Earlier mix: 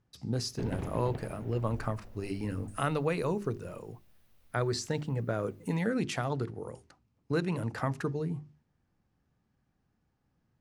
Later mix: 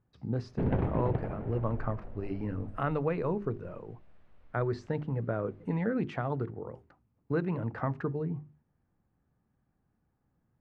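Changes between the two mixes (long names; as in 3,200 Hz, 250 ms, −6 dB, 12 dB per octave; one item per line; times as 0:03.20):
background +7.5 dB
master: add low-pass filter 1,700 Hz 12 dB per octave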